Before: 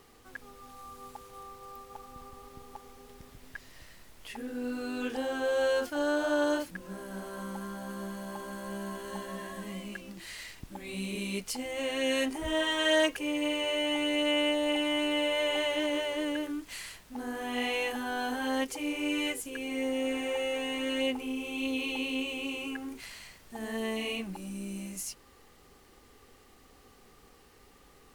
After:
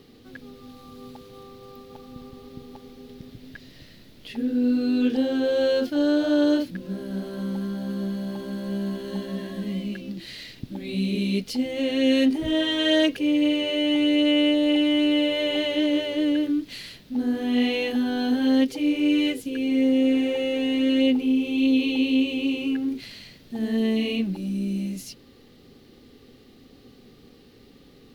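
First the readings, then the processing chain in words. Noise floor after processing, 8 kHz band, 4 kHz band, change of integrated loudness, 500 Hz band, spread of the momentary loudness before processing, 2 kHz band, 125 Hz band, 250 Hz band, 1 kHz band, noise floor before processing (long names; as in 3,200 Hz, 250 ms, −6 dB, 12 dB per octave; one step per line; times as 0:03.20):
−52 dBFS, can't be measured, +5.5 dB, +8.5 dB, +5.0 dB, 19 LU, +1.0 dB, +11.5 dB, +13.0 dB, −2.5 dB, −58 dBFS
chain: octave-band graphic EQ 125/250/500/1,000/4,000/8,000 Hz +10/+12/+5/−7/+11/−9 dB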